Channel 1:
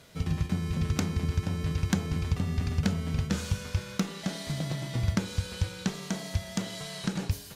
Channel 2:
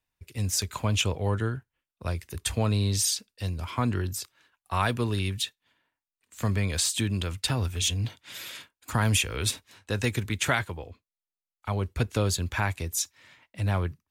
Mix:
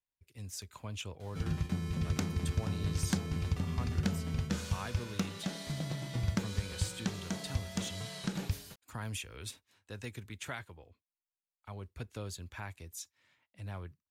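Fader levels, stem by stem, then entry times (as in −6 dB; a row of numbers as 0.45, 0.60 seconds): −5.0, −16.0 decibels; 1.20, 0.00 seconds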